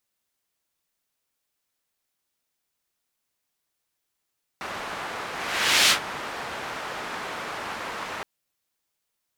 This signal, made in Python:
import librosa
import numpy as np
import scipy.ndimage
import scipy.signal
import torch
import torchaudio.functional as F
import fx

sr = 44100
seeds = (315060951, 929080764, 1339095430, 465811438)

y = fx.whoosh(sr, seeds[0], length_s=3.62, peak_s=1.29, rise_s=0.62, fall_s=0.11, ends_hz=1200.0, peak_hz=3600.0, q=0.85, swell_db=16.0)